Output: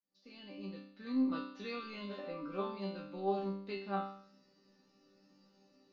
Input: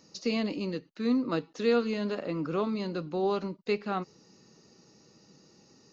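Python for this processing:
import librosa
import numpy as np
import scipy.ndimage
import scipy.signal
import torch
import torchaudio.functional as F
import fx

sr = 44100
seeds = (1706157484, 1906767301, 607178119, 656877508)

y = fx.fade_in_head(x, sr, length_s=1.15)
y = scipy.signal.sosfilt(scipy.signal.butter(4, 4700.0, 'lowpass', fs=sr, output='sos'), y)
y = fx.resonator_bank(y, sr, root=55, chord='sus4', decay_s=0.62)
y = F.gain(torch.from_numpy(y), 12.0).numpy()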